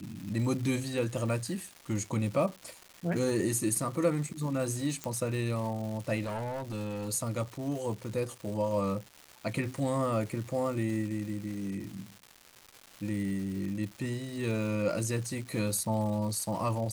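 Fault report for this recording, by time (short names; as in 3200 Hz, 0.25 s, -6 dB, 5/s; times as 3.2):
crackle 410/s -39 dBFS
5.04 pop -18 dBFS
6.24–7.09 clipped -31.5 dBFS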